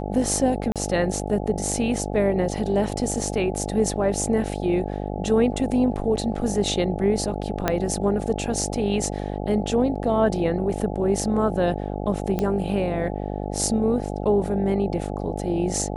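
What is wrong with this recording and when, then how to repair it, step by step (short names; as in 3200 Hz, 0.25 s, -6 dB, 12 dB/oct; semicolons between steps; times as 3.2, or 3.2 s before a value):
buzz 50 Hz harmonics 17 -29 dBFS
0.72–0.76 gap 37 ms
7.68 pop -6 dBFS
12.39 pop -12 dBFS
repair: de-click; de-hum 50 Hz, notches 17; interpolate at 0.72, 37 ms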